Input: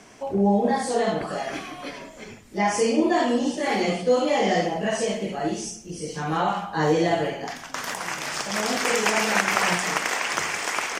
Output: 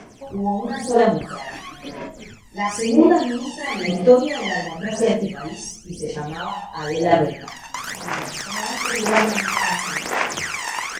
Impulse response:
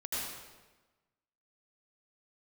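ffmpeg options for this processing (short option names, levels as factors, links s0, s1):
-filter_complex "[0:a]asettb=1/sr,asplit=3[s0][s1][s2];[s0]atrim=end=5.944[s3];[s1]atrim=start=5.94:end=7.13,asetpts=PTS-STARTPTS,afade=t=in:d=0.004:c=qsin,afade=t=out:st=1.186:d=0.004:c=qsin,equalizer=f=160:t=o:w=0.33:g=-10,equalizer=f=315:t=o:w=0.33:g=-7,equalizer=f=1250:t=o:w=0.33:g=-9[s4];[s2]atrim=start=7.126[s5];[s3][s4]acrossfade=d=0.004:c1=hsin:c2=qsin[s6];[s6][s5]acrossfade=d=0.004:c1=qsin:c2=hsin,aphaser=in_gain=1:out_gain=1:delay=1.1:decay=0.74:speed=0.98:type=sinusoidal,volume=0.75"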